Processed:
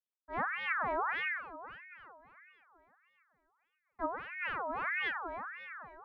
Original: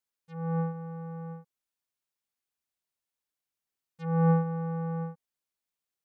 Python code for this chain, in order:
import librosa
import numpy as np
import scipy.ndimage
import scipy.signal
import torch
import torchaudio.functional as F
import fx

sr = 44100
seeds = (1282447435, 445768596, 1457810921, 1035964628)

y = fx.dead_time(x, sr, dead_ms=0.23)
y = fx.echo_diffused(y, sr, ms=452, feedback_pct=49, wet_db=-14.5)
y = fx.over_compress(y, sr, threshold_db=-35.0, ratio=-1.0)
y = fx.filter_lfo_lowpass(y, sr, shape='sine', hz=3.6, low_hz=320.0, high_hz=1500.0, q=4.0)
y = fx.ring_lfo(y, sr, carrier_hz=1400.0, swing_pct=45, hz=1.6)